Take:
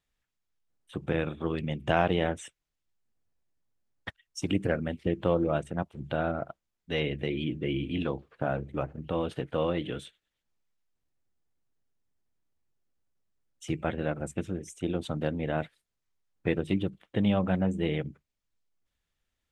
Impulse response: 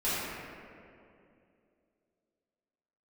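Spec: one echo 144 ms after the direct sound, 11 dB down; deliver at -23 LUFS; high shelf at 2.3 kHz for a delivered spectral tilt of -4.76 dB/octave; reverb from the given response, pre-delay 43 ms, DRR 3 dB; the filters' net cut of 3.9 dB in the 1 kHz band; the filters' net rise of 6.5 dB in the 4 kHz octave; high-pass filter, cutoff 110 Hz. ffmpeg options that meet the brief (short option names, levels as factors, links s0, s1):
-filter_complex "[0:a]highpass=110,equalizer=f=1000:t=o:g=-7.5,highshelf=f=2300:g=5.5,equalizer=f=4000:t=o:g=5,aecho=1:1:144:0.282,asplit=2[s0][s1];[1:a]atrim=start_sample=2205,adelay=43[s2];[s1][s2]afir=irnorm=-1:irlink=0,volume=0.211[s3];[s0][s3]amix=inputs=2:normalize=0,volume=2.11"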